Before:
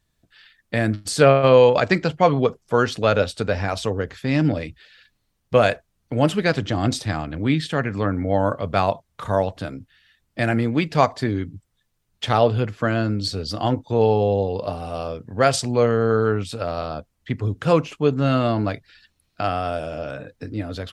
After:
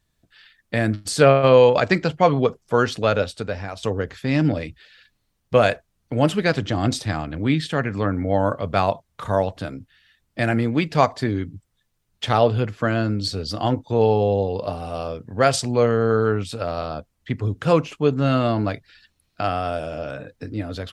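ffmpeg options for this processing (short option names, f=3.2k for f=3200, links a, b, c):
-filter_complex "[0:a]asplit=2[a][b];[a]atrim=end=3.83,asetpts=PTS-STARTPTS,afade=t=out:st=2.92:d=0.91:silence=0.316228[c];[b]atrim=start=3.83,asetpts=PTS-STARTPTS,afade=t=in:d=0.004:c=hsin:silence=0.316228[d];[c][d]concat=n=2:v=0:a=1"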